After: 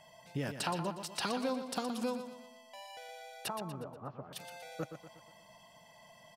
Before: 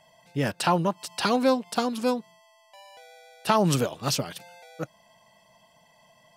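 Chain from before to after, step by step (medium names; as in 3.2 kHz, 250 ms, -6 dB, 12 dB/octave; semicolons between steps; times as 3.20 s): compression 3:1, threshold -37 dBFS, peak gain reduction 15 dB; 3.48–4.33 s: four-pole ladder low-pass 1.4 kHz, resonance 35%; on a send: feedback delay 120 ms, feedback 46%, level -9 dB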